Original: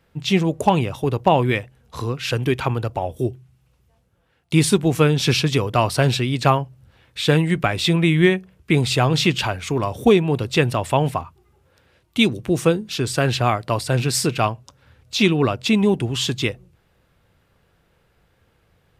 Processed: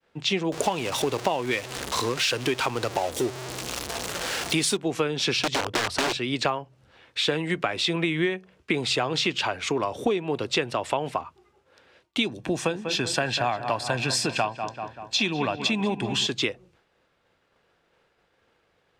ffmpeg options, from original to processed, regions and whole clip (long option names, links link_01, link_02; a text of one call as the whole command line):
ffmpeg -i in.wav -filter_complex "[0:a]asettb=1/sr,asplit=3[link_01][link_02][link_03];[link_01]atrim=end=0.524[link_04];[link_02]atrim=start=0.52:end=4.77,asetpts=PTS-STARTPTS,afade=type=in:duration=0.004:curve=qsin,afade=type=out:start_time=4.246:duration=0.004:curve=qsin,aeval=exprs='val(0)+0.5*0.0473*sgn(val(0))':channel_layout=same,highshelf=frequency=4800:gain=11.5[link_05];[link_03]atrim=start=4.766[link_06];[link_04][link_05]acrossfade=duration=0.004:curve1=hsin:curve2=qsin[link_07];[link_07][link_06]acrossfade=duration=0.004:curve1=qsin:curve2=hsin,asettb=1/sr,asplit=3[link_08][link_09][link_10];[link_08]atrim=end=5.394[link_11];[link_09]atrim=start=5.39:end=6.17,asetpts=PTS-STARTPTS,afade=type=in:duration=0.004:curve=qsin,afade=type=out:start_time=0.776:duration=0.004:curve=qsin,equalizer=frequency=76:width_type=o:width=1.5:gain=11.5,aeval=exprs='(mod(3.76*val(0)+1,2)-1)/3.76':channel_layout=same[link_12];[link_10]atrim=start=6.166[link_13];[link_11][link_12]acrossfade=duration=0.004:curve1=hsin:curve2=qsin[link_14];[link_14][link_13]acrossfade=duration=0.004:curve1=qsin:curve2=hsin,asettb=1/sr,asplit=3[link_15][link_16][link_17];[link_15]atrim=end=12.274[link_18];[link_16]atrim=start=12.27:end=16.27,asetpts=PTS-STARTPTS,afade=type=in:duration=0.004:curve=qsin,afade=type=out:start_time=3.996:duration=0.004:curve=qsin,aecho=1:1:1.2:0.49,atrim=end_sample=176400,asplit=2[link_19][link_20];[link_20]adelay=193,lowpass=frequency=2700:poles=1,volume=-12dB,asplit=2[link_21][link_22];[link_22]adelay=193,lowpass=frequency=2700:poles=1,volume=0.53,asplit=2[link_23][link_24];[link_24]adelay=193,lowpass=frequency=2700:poles=1,volume=0.53,asplit=2[link_25][link_26];[link_26]adelay=193,lowpass=frequency=2700:poles=1,volume=0.53,asplit=2[link_27][link_28];[link_28]adelay=193,lowpass=frequency=2700:poles=1,volume=0.53,asplit=2[link_29][link_30];[link_30]adelay=193,lowpass=frequency=2700:poles=1,volume=0.53[link_31];[link_19][link_21][link_23][link_25][link_27][link_29][link_31]amix=inputs=7:normalize=0,atrim=end_sample=176400[link_32];[link_17]atrim=start=16.266[link_33];[link_18][link_32]acrossfade=duration=0.004:curve1=hsin:curve2=qsin[link_34];[link_34][link_33]acrossfade=duration=0.004:curve1=qsin:curve2=hsin,acrossover=split=250 7900:gain=0.178 1 0.141[link_35][link_36][link_37];[link_35][link_36][link_37]amix=inputs=3:normalize=0,acompressor=threshold=-25dB:ratio=6,agate=range=-33dB:threshold=-60dB:ratio=3:detection=peak,volume=3dB" out.wav